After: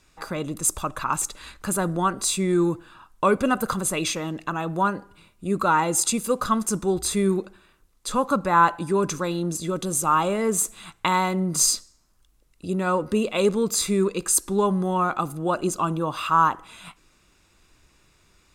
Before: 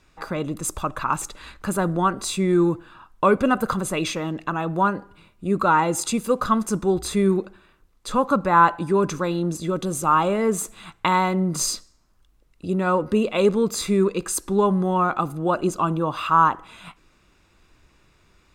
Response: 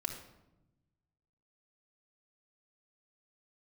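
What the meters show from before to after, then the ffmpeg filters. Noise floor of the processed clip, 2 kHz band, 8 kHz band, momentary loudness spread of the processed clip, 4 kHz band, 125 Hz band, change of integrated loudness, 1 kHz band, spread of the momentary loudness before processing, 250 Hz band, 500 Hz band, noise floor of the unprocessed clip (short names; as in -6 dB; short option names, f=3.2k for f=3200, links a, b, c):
-62 dBFS, -1.5 dB, +5.5 dB, 9 LU, +1.5 dB, -2.5 dB, -1.5 dB, -2.0 dB, 9 LU, -2.5 dB, -2.5 dB, -60 dBFS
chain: -af "equalizer=f=10k:t=o:w=2:g=9,volume=-2.5dB"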